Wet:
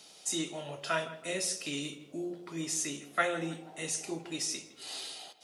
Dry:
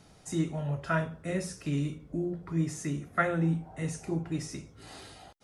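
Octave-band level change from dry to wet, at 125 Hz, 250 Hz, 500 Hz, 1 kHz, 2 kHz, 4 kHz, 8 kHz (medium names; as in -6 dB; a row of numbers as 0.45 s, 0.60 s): -15.0 dB, -7.0 dB, -2.0 dB, -1.5 dB, 0.0 dB, +10.5 dB, +9.5 dB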